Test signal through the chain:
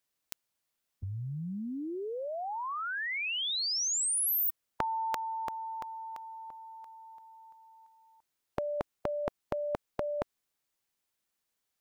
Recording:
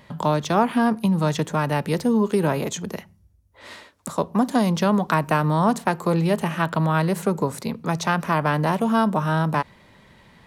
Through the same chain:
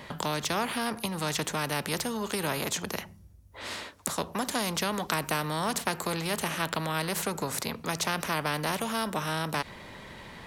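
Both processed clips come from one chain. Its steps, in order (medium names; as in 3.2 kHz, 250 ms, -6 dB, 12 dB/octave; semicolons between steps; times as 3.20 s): spectrum-flattening compressor 2:1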